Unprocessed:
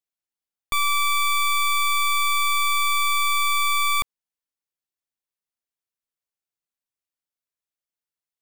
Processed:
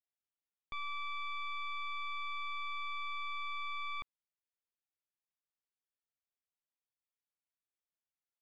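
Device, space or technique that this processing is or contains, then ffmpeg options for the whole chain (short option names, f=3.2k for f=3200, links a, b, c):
synthesiser wavefolder: -af "aeval=exprs='0.0631*(abs(mod(val(0)/0.0631+3,4)-2)-1)':c=same,lowpass=f=3.6k:w=0.5412,lowpass=f=3.6k:w=1.3066,volume=-8dB"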